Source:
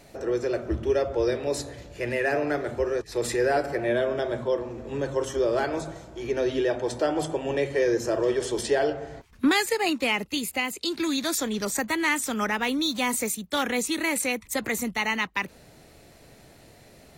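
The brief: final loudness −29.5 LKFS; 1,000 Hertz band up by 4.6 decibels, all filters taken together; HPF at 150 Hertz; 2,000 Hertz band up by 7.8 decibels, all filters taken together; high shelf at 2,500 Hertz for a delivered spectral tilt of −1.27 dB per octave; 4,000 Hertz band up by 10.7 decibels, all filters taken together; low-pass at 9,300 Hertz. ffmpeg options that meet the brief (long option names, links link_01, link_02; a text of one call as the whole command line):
ffmpeg -i in.wav -af "highpass=150,lowpass=9300,equalizer=frequency=1000:width_type=o:gain=4,equalizer=frequency=2000:width_type=o:gain=3.5,highshelf=frequency=2500:gain=7,equalizer=frequency=4000:width_type=o:gain=6,volume=-8dB" out.wav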